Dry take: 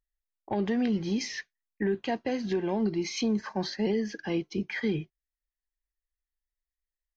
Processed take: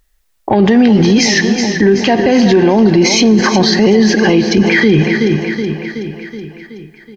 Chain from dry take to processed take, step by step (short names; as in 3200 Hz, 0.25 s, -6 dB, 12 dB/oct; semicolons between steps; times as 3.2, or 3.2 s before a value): feedback echo 0.374 s, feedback 59%, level -13 dB; on a send at -15 dB: reverb RT60 3.2 s, pre-delay 33 ms; on the sum: maximiser +29 dB; gain -1 dB